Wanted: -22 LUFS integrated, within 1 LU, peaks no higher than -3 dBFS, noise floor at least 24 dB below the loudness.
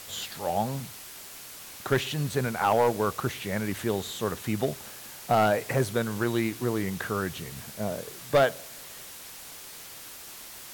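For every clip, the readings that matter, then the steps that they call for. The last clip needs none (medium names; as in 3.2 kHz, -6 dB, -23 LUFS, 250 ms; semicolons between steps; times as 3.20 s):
clipped samples 0.4%; clipping level -15.0 dBFS; noise floor -44 dBFS; noise floor target -53 dBFS; loudness -28.5 LUFS; peak level -15.0 dBFS; loudness target -22.0 LUFS
-> clip repair -15 dBFS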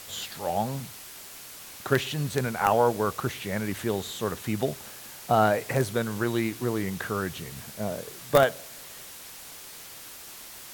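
clipped samples 0.0%; noise floor -44 dBFS; noise floor target -52 dBFS
-> noise print and reduce 8 dB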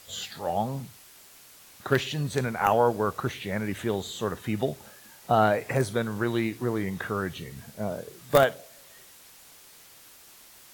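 noise floor -52 dBFS; loudness -27.5 LUFS; peak level -6.0 dBFS; loudness target -22.0 LUFS
-> trim +5.5 dB; peak limiter -3 dBFS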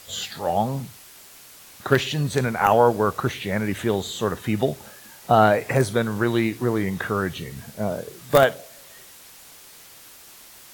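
loudness -22.5 LUFS; peak level -3.0 dBFS; noise floor -47 dBFS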